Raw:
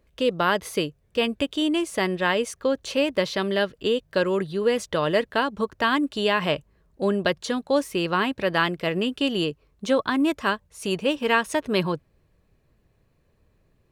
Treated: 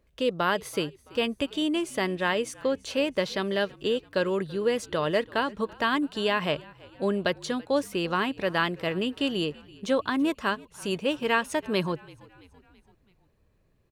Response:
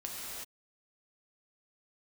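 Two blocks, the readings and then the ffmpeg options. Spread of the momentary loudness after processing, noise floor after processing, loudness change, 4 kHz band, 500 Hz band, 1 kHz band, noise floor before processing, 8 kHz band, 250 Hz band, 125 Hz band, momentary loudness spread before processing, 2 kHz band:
5 LU, -66 dBFS, -3.5 dB, -3.5 dB, -3.5 dB, -3.5 dB, -66 dBFS, -3.5 dB, -3.5 dB, -3.5 dB, 5 LU, -3.5 dB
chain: -filter_complex "[0:a]asplit=5[a][b][c][d][e];[b]adelay=332,afreqshift=-49,volume=-23dB[f];[c]adelay=664,afreqshift=-98,volume=-28.4dB[g];[d]adelay=996,afreqshift=-147,volume=-33.7dB[h];[e]adelay=1328,afreqshift=-196,volume=-39.1dB[i];[a][f][g][h][i]amix=inputs=5:normalize=0,volume=-3.5dB"

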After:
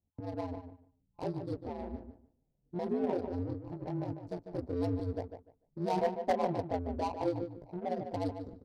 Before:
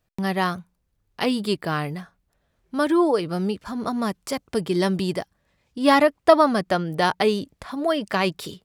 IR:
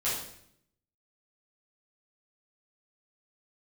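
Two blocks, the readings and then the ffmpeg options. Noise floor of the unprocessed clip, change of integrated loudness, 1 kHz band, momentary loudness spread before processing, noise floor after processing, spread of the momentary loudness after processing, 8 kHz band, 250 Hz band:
-72 dBFS, -14.0 dB, -14.0 dB, 14 LU, -78 dBFS, 12 LU, under -20 dB, -13.5 dB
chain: -filter_complex "[0:a]afftfilt=real='re*(1-between(b*sr/4096,940,3800))':imag='im*(1-between(b*sr/4096,940,3800))':win_size=4096:overlap=0.75,adynamicequalizer=threshold=0.00141:dfrequency=9900:dqfactor=6.5:tfrequency=9900:tqfactor=6.5:attack=5:release=100:ratio=0.375:range=1.5:mode=boostabove:tftype=bell,asplit=2[a][b];[b]acompressor=threshold=-31dB:ratio=16,volume=0dB[c];[a][c]amix=inputs=2:normalize=0,flanger=delay=15.5:depth=3.7:speed=1.2,aeval=exprs='val(0)*sin(2*PI*88*n/s)':c=same,adynamicsmooth=sensitivity=2.5:basefreq=570,asplit=2[d][e];[e]adelay=148,lowpass=f=2.6k:p=1,volume=-8dB,asplit=2[f][g];[g]adelay=148,lowpass=f=2.6k:p=1,volume=0.19,asplit=2[h][i];[i]adelay=148,lowpass=f=2.6k:p=1,volume=0.19[j];[f][h][j]amix=inputs=3:normalize=0[k];[d][k]amix=inputs=2:normalize=0,asoftclip=type=hard:threshold=-13.5dB,volume=-8.5dB"

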